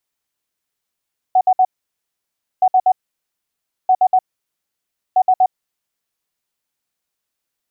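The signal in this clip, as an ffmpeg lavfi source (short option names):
-f lavfi -i "aevalsrc='0.376*sin(2*PI*745*t)*clip(min(mod(mod(t,1.27),0.12),0.06-mod(mod(t,1.27),0.12))/0.005,0,1)*lt(mod(t,1.27),0.36)':d=5.08:s=44100"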